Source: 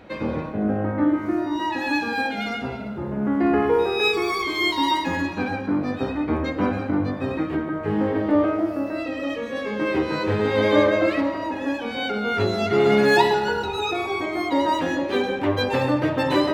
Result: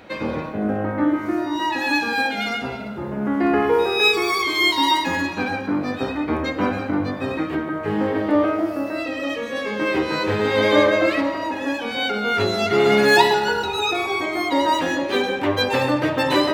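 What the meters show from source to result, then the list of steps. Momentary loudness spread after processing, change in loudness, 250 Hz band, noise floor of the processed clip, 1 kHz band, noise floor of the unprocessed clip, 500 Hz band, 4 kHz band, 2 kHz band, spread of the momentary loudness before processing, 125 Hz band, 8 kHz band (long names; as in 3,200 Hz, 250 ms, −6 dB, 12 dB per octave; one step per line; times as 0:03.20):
9 LU, +2.0 dB, +0.5 dB, −29 dBFS, +3.0 dB, −31 dBFS, +1.5 dB, +6.0 dB, +4.5 dB, 9 LU, −1.5 dB, can't be measured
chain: spectral tilt +1.5 dB per octave
level +3 dB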